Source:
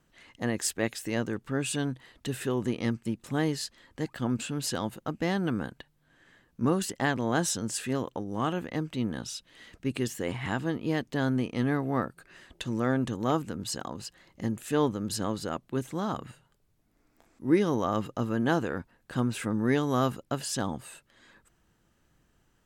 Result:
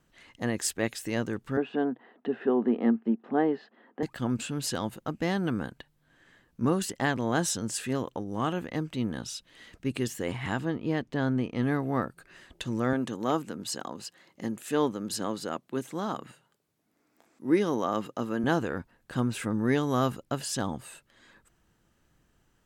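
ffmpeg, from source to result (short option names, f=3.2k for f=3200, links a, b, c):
-filter_complex "[0:a]asettb=1/sr,asplit=3[a][b][c];[a]atrim=end=1.574[d];[b]atrim=start=1.57:end=4.03,asetpts=PTS-STARTPTS,afade=t=in:d=0.004:c=qsin,afade=t=out:st=2.456:d=0.004:c=qsin,highpass=f=220:w=0.5412,highpass=f=220:w=1.3066,equalizer=f=230:t=q:w=4:g=9,equalizer=f=420:t=q:w=4:g=7,equalizer=f=740:t=q:w=4:g=9,equalizer=f=2.3k:t=q:w=4:g=-9,lowpass=f=2.4k:w=0.5412,lowpass=f=2.4k:w=1.3066[e];[c]atrim=start=4.026[f];[d][e]acrossfade=d=0.004:c1=hsin:c2=qsin[g];[g][f]acrossfade=d=0.004:c1=qsin:c2=hsin,asettb=1/sr,asplit=3[h][i][j];[h]atrim=end=10.654[k];[i]atrim=start=10.65:end=11.63,asetpts=PTS-STARTPTS,afade=t=in:d=0.004:c=qsin,afade=t=out:st=0.976:d=0.004:c=qsin,lowpass=f=3k:p=1[l];[j]atrim=start=11.626[m];[k][l]acrossfade=d=0.004:c1=hsin:c2=qsin[n];[n][m]acrossfade=d=0.004:c1=qsin:c2=hsin,asettb=1/sr,asplit=3[o][p][q];[o]atrim=end=12.934[r];[p]atrim=start=12.93:end=18.44,asetpts=PTS-STARTPTS,afade=t=in:d=0.004:c=qsin,afade=t=out:st=5.506:d=0.004:c=qsin,highpass=190[s];[q]atrim=start=18.436[t];[r][s]acrossfade=d=0.004:c1=hsin:c2=qsin[u];[u][t]acrossfade=d=0.004:c1=qsin:c2=hsin"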